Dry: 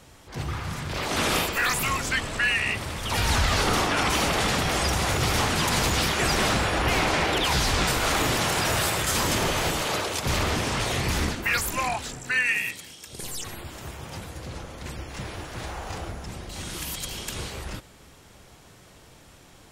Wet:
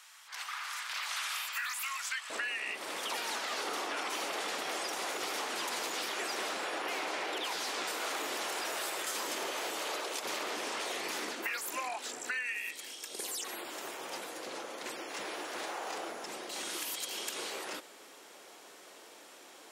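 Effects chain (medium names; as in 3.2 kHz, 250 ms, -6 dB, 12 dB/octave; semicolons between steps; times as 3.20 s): high-pass 1.1 kHz 24 dB/octave, from 2.30 s 320 Hz; compression 5:1, threshold -35 dBFS, peak gain reduction 13.5 dB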